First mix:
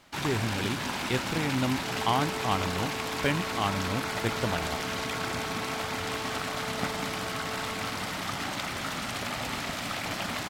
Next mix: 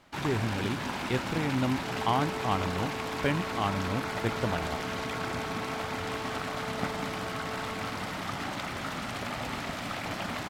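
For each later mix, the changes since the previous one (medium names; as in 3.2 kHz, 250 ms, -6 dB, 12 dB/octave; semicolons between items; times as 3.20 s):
master: add treble shelf 2.7 kHz -7.5 dB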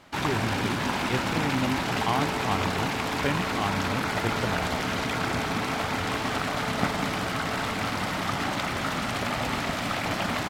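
first sound +6.5 dB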